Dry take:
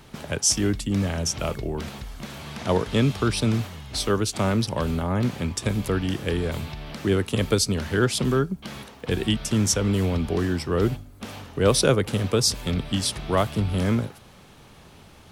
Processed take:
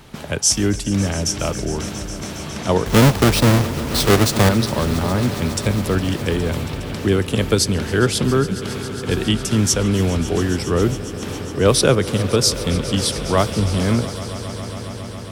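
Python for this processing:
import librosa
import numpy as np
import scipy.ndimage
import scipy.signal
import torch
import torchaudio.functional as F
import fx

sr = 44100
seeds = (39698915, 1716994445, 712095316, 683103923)

y = fx.halfwave_hold(x, sr, at=(2.86, 4.49))
y = fx.echo_swell(y, sr, ms=137, loudest=5, wet_db=-18)
y = y * 10.0 ** (4.5 / 20.0)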